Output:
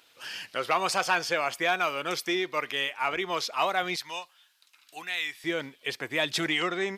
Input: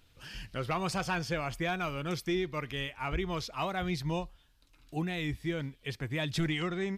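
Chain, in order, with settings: HPF 500 Hz 12 dB/oct, from 3.96 s 1300 Hz, from 5.44 s 430 Hz; gain +8.5 dB

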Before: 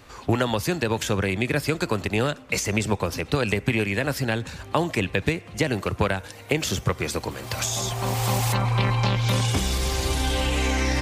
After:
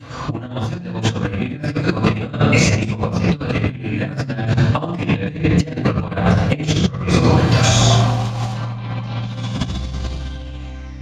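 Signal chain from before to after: high shelf 8700 Hz -9.5 dB; reverb RT60 1.1 s, pre-delay 3 ms, DRR -19 dB; negative-ratio compressor -6 dBFS, ratio -0.5; gain -11.5 dB

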